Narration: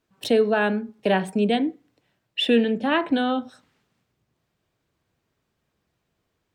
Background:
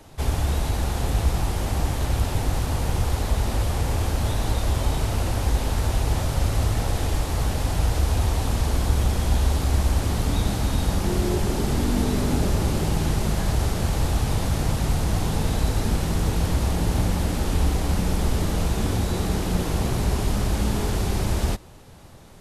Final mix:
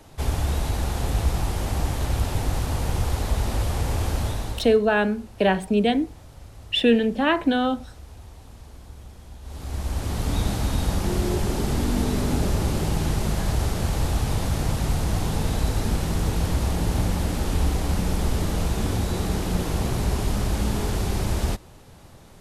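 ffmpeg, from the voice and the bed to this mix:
ffmpeg -i stem1.wav -i stem2.wav -filter_complex "[0:a]adelay=4350,volume=1dB[link_01];[1:a]volume=19.5dB,afade=type=out:start_time=4.17:duration=0.62:silence=0.0944061,afade=type=in:start_time=9.42:duration=0.97:silence=0.0944061[link_02];[link_01][link_02]amix=inputs=2:normalize=0" out.wav

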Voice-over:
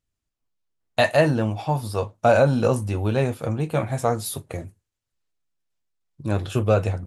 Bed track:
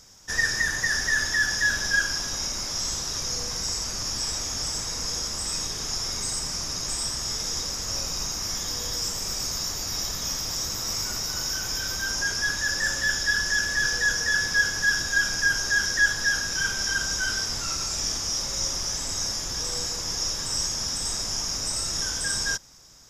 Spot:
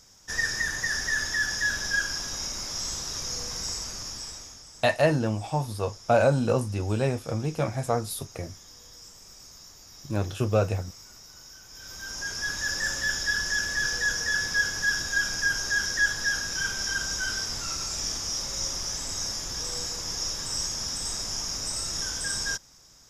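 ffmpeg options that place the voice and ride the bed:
ffmpeg -i stem1.wav -i stem2.wav -filter_complex "[0:a]adelay=3850,volume=-4dB[link_01];[1:a]volume=12.5dB,afade=type=out:start_time=3.69:duration=0.94:silence=0.16788,afade=type=in:start_time=11.7:duration=0.98:silence=0.158489[link_02];[link_01][link_02]amix=inputs=2:normalize=0" out.wav

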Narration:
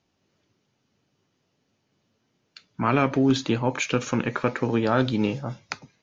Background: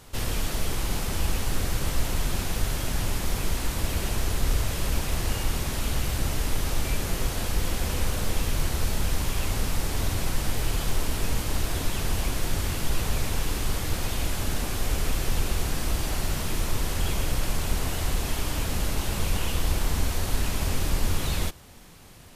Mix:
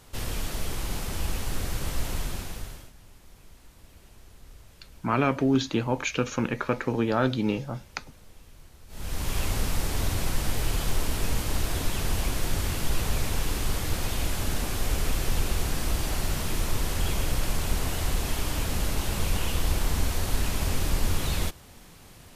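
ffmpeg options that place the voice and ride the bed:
ffmpeg -i stem1.wav -i stem2.wav -filter_complex "[0:a]adelay=2250,volume=-2.5dB[link_01];[1:a]volume=21dB,afade=type=out:start_time=2.15:duration=0.77:silence=0.0841395,afade=type=in:start_time=8.88:duration=0.48:silence=0.0595662[link_02];[link_01][link_02]amix=inputs=2:normalize=0" out.wav

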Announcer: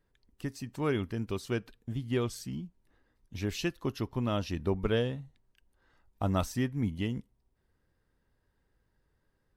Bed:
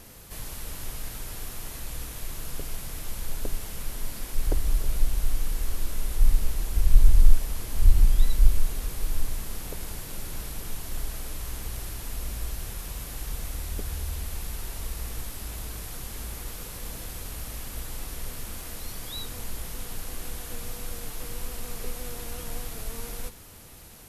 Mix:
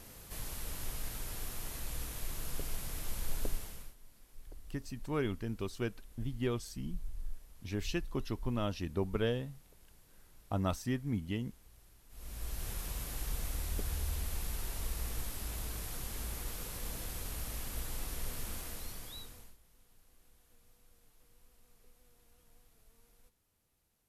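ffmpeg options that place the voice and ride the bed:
ffmpeg -i stem1.wav -i stem2.wav -filter_complex "[0:a]adelay=4300,volume=-4dB[link_01];[1:a]volume=17.5dB,afade=type=out:start_time=3.44:duration=0.51:silence=0.0841395,afade=type=in:start_time=12.09:duration=0.62:silence=0.0794328,afade=type=out:start_time=18.53:duration=1.04:silence=0.0501187[link_02];[link_01][link_02]amix=inputs=2:normalize=0" out.wav

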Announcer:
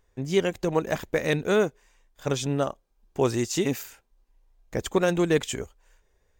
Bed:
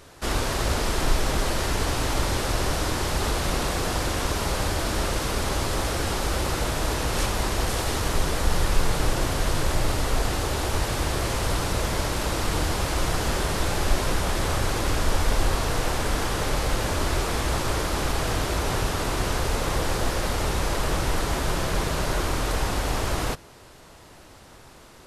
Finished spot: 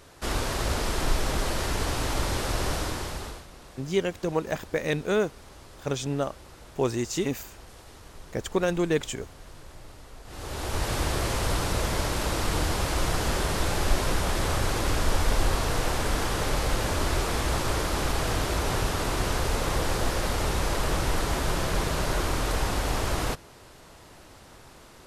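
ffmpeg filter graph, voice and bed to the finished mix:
ffmpeg -i stem1.wav -i stem2.wav -filter_complex "[0:a]adelay=3600,volume=-2.5dB[link_01];[1:a]volume=18dB,afade=type=out:start_time=2.73:duration=0.73:silence=0.105925,afade=type=in:start_time=10.25:duration=0.69:silence=0.0891251[link_02];[link_01][link_02]amix=inputs=2:normalize=0" out.wav

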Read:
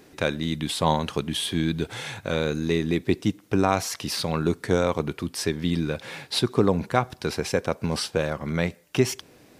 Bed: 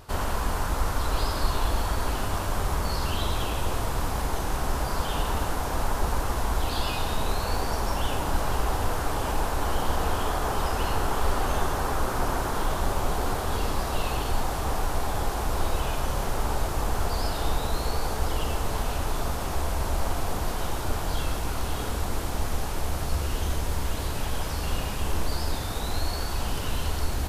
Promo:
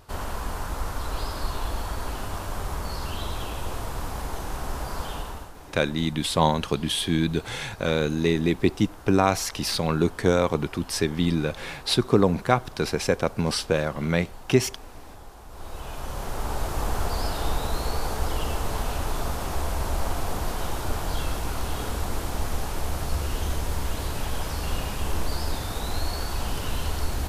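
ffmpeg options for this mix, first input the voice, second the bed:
ffmpeg -i stem1.wav -i stem2.wav -filter_complex "[0:a]adelay=5550,volume=1.5dB[link_01];[1:a]volume=13.5dB,afade=type=out:start_time=5.06:duration=0.47:silence=0.211349,afade=type=in:start_time=15.49:duration=1.35:silence=0.133352[link_02];[link_01][link_02]amix=inputs=2:normalize=0" out.wav

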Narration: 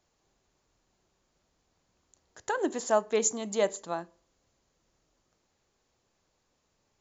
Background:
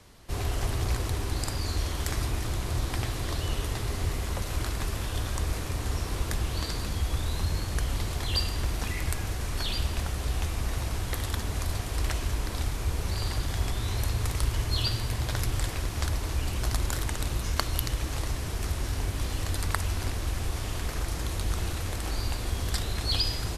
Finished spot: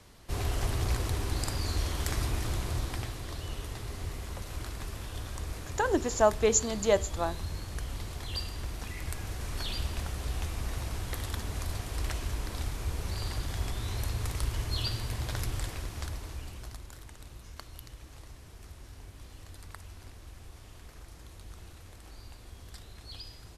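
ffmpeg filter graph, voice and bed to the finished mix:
ffmpeg -i stem1.wav -i stem2.wav -filter_complex "[0:a]adelay=3300,volume=2dB[link_01];[1:a]volume=2dB,afade=type=out:start_time=2.55:duration=0.65:silence=0.473151,afade=type=in:start_time=8.91:duration=0.61:silence=0.668344,afade=type=out:start_time=15.43:duration=1.4:silence=0.211349[link_02];[link_01][link_02]amix=inputs=2:normalize=0" out.wav

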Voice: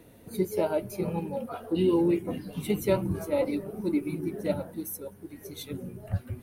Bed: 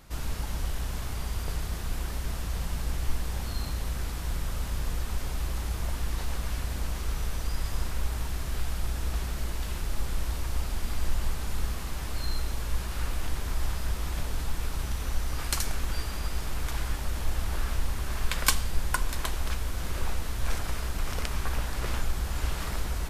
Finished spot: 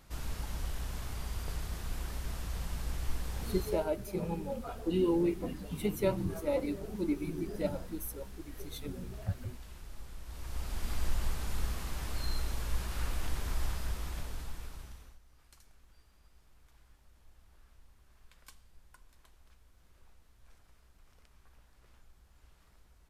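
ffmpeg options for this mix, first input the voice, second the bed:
ffmpeg -i stem1.wav -i stem2.wav -filter_complex "[0:a]adelay=3150,volume=-5dB[link_01];[1:a]volume=6.5dB,afade=type=out:start_time=3.57:duration=0.31:silence=0.298538,afade=type=in:start_time=10.25:duration=0.67:silence=0.237137,afade=type=out:start_time=13.56:duration=1.63:silence=0.0398107[link_02];[link_01][link_02]amix=inputs=2:normalize=0" out.wav

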